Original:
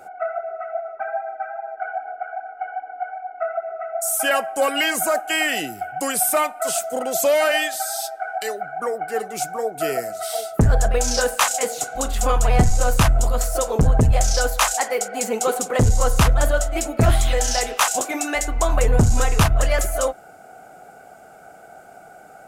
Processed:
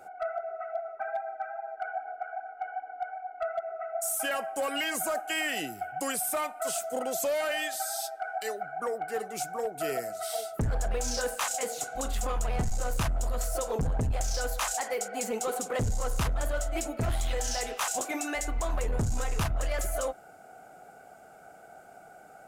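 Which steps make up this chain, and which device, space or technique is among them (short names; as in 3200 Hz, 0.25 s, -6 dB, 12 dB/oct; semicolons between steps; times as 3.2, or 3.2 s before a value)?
limiter into clipper (limiter -14.5 dBFS, peak gain reduction 7.5 dB; hard clip -17 dBFS, distortion -22 dB); gain -7 dB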